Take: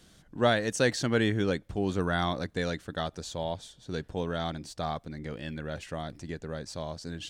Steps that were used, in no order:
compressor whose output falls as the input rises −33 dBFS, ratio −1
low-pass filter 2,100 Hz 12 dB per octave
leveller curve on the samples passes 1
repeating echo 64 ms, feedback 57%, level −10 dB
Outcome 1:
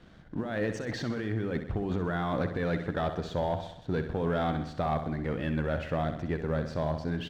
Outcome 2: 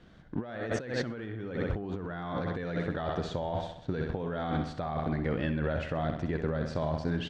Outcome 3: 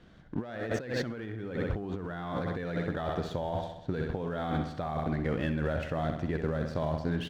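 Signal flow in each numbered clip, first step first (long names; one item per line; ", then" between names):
low-pass filter, then compressor whose output falls as the input rises, then repeating echo, then leveller curve on the samples
repeating echo, then leveller curve on the samples, then low-pass filter, then compressor whose output falls as the input rises
low-pass filter, then leveller curve on the samples, then repeating echo, then compressor whose output falls as the input rises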